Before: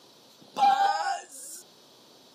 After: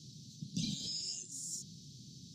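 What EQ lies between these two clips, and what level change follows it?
elliptic band-stop 160–6800 Hz, stop band 80 dB; distance through air 210 m; peaking EQ 2.6 kHz +8 dB 2.8 oct; +18.0 dB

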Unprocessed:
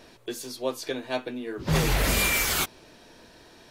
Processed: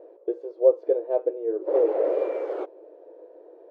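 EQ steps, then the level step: brick-wall FIR high-pass 300 Hz; resonant low-pass 520 Hz, resonance Q 5.2; 0.0 dB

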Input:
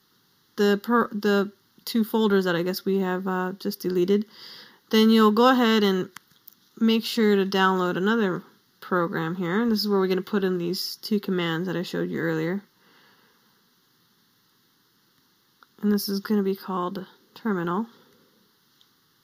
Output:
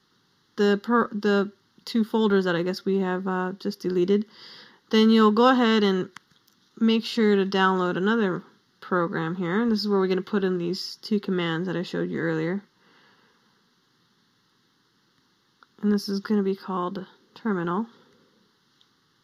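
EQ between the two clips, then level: distance through air 63 m; 0.0 dB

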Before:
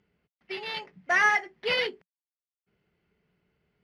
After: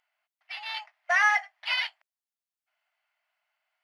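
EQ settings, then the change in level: brick-wall FIR high-pass 600 Hz; 0.0 dB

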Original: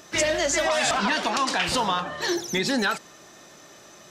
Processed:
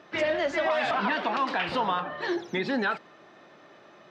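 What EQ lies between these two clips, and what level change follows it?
high-pass 71 Hz; distance through air 370 m; bass shelf 140 Hz -11.5 dB; 0.0 dB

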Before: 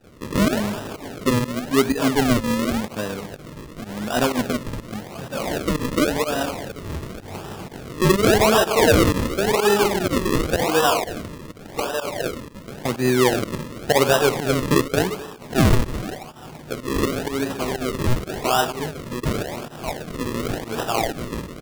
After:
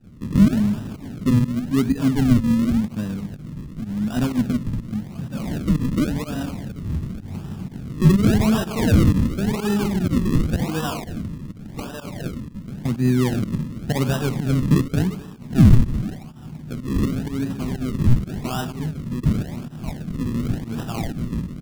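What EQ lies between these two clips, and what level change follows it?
resonant low shelf 310 Hz +13.5 dB, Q 1.5; -9.0 dB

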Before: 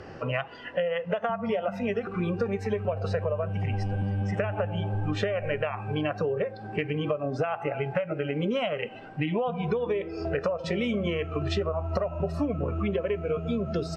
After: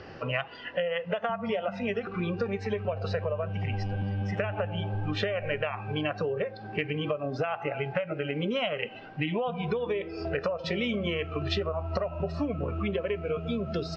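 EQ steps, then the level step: low-pass 4.8 kHz 24 dB/octave; treble shelf 2.9 kHz +10.5 dB; -2.5 dB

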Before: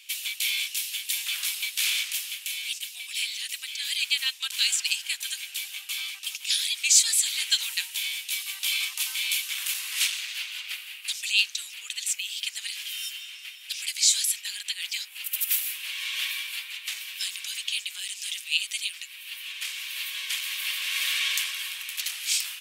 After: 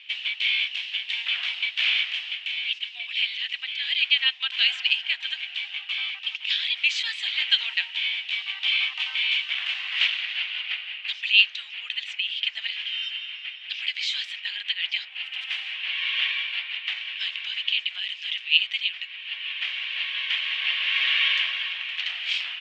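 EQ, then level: cabinet simulation 400–3200 Hz, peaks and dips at 690 Hz +10 dB, 1.9 kHz +4 dB, 3 kHz +6 dB; +3.5 dB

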